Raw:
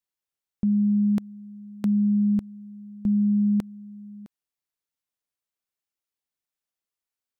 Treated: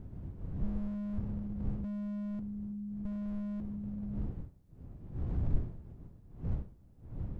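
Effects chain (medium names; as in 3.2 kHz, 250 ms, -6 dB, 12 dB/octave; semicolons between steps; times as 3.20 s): wind noise 120 Hz -37 dBFS; slew-rate limiter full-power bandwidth 2.8 Hz; trim +1 dB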